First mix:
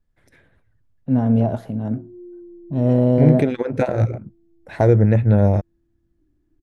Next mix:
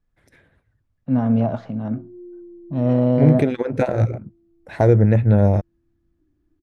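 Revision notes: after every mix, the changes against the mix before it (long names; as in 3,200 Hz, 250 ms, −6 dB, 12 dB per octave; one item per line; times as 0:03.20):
first voice: add loudspeaker in its box 110–5,800 Hz, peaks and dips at 390 Hz −8 dB, 1,200 Hz +7 dB, 2,300 Hz +3 dB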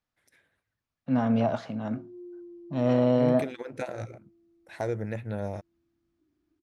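second voice −11.5 dB
master: add spectral tilt +3 dB per octave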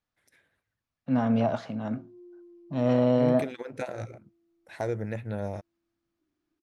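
background: add spectral tilt +4 dB per octave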